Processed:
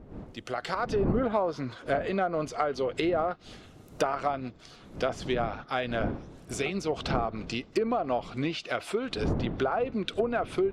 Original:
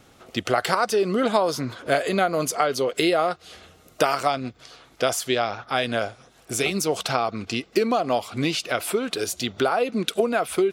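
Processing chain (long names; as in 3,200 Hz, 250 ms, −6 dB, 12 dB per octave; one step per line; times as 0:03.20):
fade in at the beginning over 1.07 s
wind on the microphone 280 Hz −33 dBFS
treble cut that deepens with the level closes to 1,400 Hz, closed at −16.5 dBFS
in parallel at −10.5 dB: hard clipping −15 dBFS, distortion −17 dB
on the sum: level −8 dB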